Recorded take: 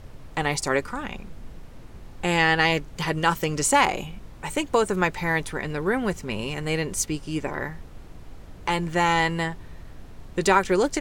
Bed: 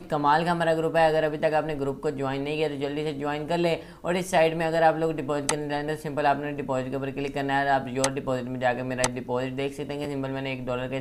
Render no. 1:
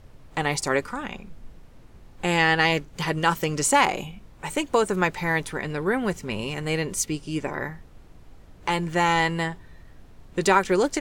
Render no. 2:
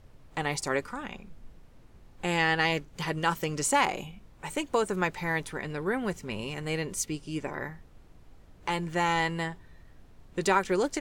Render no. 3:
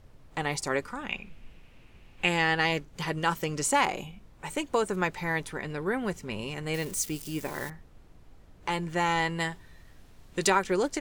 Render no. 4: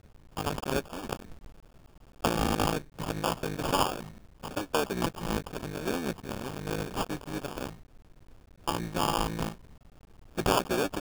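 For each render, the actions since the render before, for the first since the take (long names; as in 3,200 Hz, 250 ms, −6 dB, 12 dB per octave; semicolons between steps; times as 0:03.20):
noise reduction from a noise print 6 dB
level −5.5 dB
0:01.09–0:02.29: parametric band 2,600 Hz +14.5 dB 0.74 octaves; 0:06.74–0:07.70: spike at every zero crossing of −33 dBFS; 0:09.40–0:10.50: high-shelf EQ 2,000 Hz +8 dB
sub-harmonics by changed cycles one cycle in 3, muted; sample-rate reduction 2,000 Hz, jitter 0%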